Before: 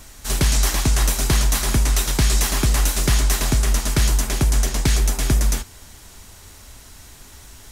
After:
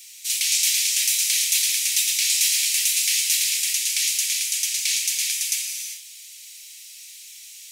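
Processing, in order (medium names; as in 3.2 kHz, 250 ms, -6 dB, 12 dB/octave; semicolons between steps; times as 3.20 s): gated-style reverb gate 420 ms flat, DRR 1.5 dB; word length cut 10-bit, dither none; elliptic high-pass 2.3 kHz, stop band 60 dB; trim +3 dB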